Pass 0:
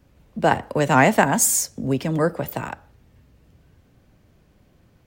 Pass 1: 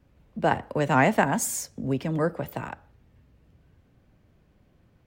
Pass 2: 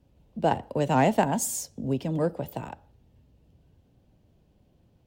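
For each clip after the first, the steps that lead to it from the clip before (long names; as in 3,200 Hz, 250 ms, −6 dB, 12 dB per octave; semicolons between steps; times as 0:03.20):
bass and treble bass +1 dB, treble −6 dB; level −5 dB
harmonic generator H 7 −35 dB, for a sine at −7.5 dBFS; flat-topped bell 1,600 Hz −8.5 dB 1.3 octaves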